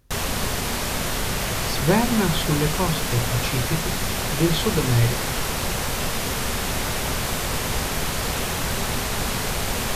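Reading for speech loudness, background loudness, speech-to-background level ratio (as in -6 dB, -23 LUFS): -24.0 LUFS, -24.5 LUFS, 0.5 dB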